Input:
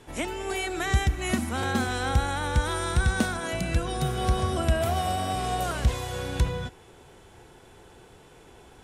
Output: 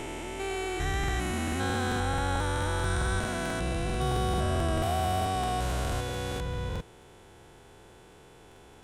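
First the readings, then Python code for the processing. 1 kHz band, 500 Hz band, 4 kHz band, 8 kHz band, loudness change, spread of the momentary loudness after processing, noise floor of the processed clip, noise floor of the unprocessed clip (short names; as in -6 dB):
-1.5 dB, -1.5 dB, -3.0 dB, -3.0 dB, -3.0 dB, 6 LU, -53 dBFS, -52 dBFS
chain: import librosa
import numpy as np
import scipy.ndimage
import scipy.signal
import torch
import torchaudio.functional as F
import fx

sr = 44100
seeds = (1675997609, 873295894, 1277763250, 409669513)

y = fx.spec_steps(x, sr, hold_ms=400)
y = fx.buffer_crackle(y, sr, first_s=0.99, period_s=0.22, block=2048, kind='repeat')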